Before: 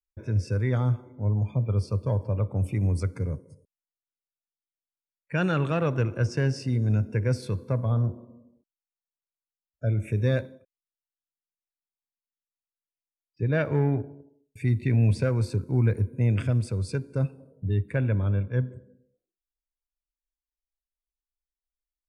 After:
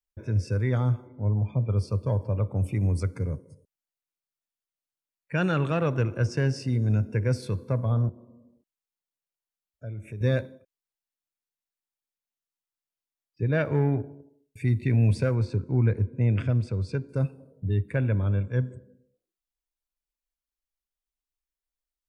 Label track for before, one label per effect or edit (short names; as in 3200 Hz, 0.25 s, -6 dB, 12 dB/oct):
1.070000	1.770000	LPF 3900 Hz
8.090000	10.210000	compressor 1.5:1, threshold -53 dBFS
15.350000	17.090000	air absorption 110 m
18.310000	18.760000	synth low-pass 7600 Hz, resonance Q 9.1